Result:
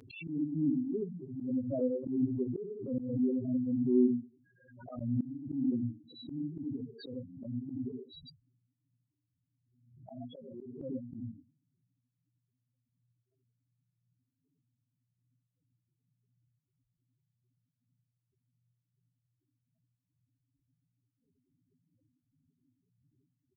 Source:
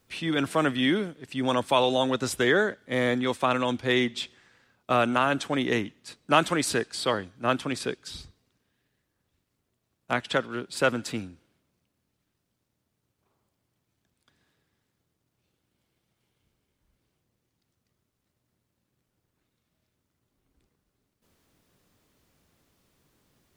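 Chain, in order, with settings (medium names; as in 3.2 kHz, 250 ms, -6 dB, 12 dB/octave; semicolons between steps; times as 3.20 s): peaking EQ 2 kHz -12 dB 0.77 oct; trance gate ".x.x.xxx..xx" 160 bpm -12 dB; on a send at -4 dB: reverberation RT60 0.30 s, pre-delay 64 ms; on the sum: low-pass that closes with the level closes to 300 Hz, closed at -29 dBFS; loudest bins only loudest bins 4; high-pass 91 Hz 12 dB/octave; bass shelf 410 Hz -11.5 dB; comb 7.4 ms, depth 96%; slow attack 156 ms; swell ahead of each attack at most 67 dB/s; trim +5 dB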